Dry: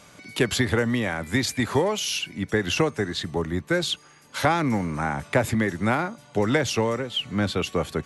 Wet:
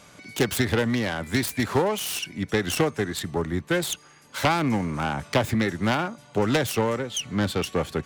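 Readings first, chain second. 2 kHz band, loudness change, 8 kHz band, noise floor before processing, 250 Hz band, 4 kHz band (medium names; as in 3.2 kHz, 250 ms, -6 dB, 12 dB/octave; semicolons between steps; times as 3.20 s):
-1.5 dB, -0.5 dB, +0.5 dB, -52 dBFS, 0.0 dB, -2.0 dB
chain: self-modulated delay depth 0.24 ms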